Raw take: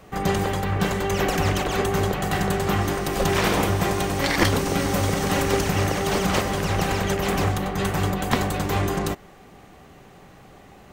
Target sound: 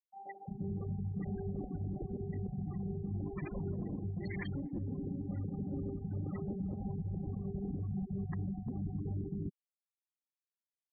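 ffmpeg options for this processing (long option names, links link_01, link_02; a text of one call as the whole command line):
ffmpeg -i in.wav -filter_complex "[0:a]afftfilt=real='re*gte(hypot(re,im),0.224)':imag='im*gte(hypot(re,im),0.224)':win_size=1024:overlap=0.75,equalizer=frequency=125:width_type=o:width=1:gain=5,equalizer=frequency=250:width_type=o:width=1:gain=7,equalizer=frequency=500:width_type=o:width=1:gain=-7,equalizer=frequency=1000:width_type=o:width=1:gain=-8,acrossover=split=730[link_01][link_02];[link_01]adelay=350[link_03];[link_03][link_02]amix=inputs=2:normalize=0,areverse,acompressor=threshold=-26dB:ratio=6,areverse,alimiter=level_in=2.5dB:limit=-24dB:level=0:latency=1:release=201,volume=-2.5dB,volume=-4dB" out.wav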